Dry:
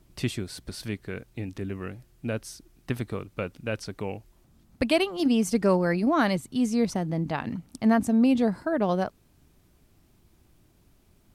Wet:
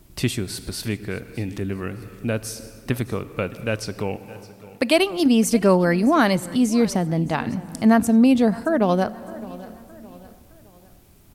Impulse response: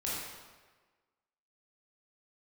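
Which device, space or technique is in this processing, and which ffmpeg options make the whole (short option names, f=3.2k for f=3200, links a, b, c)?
ducked reverb: -filter_complex "[0:a]asettb=1/sr,asplit=3[a][b][c];[a]atrim=end=4.164[d];[b]atrim=start=4.16:end=4.99,asetpts=PTS-STARTPTS,afade=t=in:d=0.004:c=qsin,afade=t=out:st=0.826:d=0.004:c=qsin,highpass=260[e];[c]atrim=start=4.986[f];[d][e]acrossfade=d=0.004:c1=hsin:c2=qsin[g];[g][f]acrossfade=d=0.004:c1=qsin:c2=hsin,highshelf=f=10k:g=8.5,aecho=1:1:614|1228|1842:0.1|0.04|0.016,asplit=3[h][i][j];[1:a]atrim=start_sample=2205[k];[i][k]afir=irnorm=-1:irlink=0[l];[j]apad=whole_len=581691[m];[l][m]sidechaincompress=threshold=-41dB:ratio=8:attack=29:release=241,volume=-9dB[n];[h][n]amix=inputs=2:normalize=0,volume=5.5dB"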